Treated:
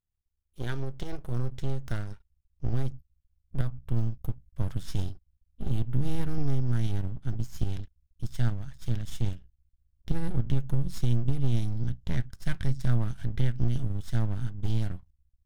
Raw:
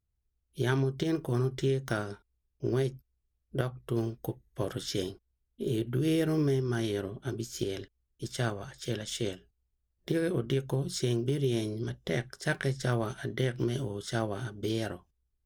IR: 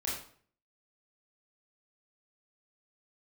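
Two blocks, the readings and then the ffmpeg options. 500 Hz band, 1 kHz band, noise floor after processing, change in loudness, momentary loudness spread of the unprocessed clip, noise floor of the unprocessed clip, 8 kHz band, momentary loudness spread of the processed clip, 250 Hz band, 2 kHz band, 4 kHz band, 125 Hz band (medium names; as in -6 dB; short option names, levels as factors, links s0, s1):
-12.0 dB, -5.5 dB, -80 dBFS, 0.0 dB, 10 LU, -80 dBFS, -8.5 dB, 10 LU, -3.5 dB, -7.5 dB, -8.0 dB, +4.0 dB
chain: -af "aeval=exprs='max(val(0),0)':c=same,asubboost=boost=11:cutoff=130,volume=0.596"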